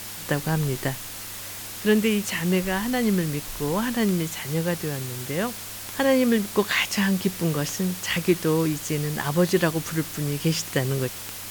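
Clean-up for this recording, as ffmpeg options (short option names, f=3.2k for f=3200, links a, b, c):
-af "adeclick=t=4,bandreject=f=100:t=h:w=4,bandreject=f=200:t=h:w=4,bandreject=f=300:t=h:w=4,afftdn=nr=30:nf=-36"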